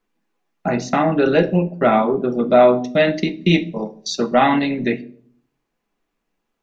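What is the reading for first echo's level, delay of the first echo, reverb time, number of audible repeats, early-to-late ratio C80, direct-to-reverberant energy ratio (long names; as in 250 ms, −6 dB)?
no echo audible, no echo audible, 0.50 s, no echo audible, 22.5 dB, 7.5 dB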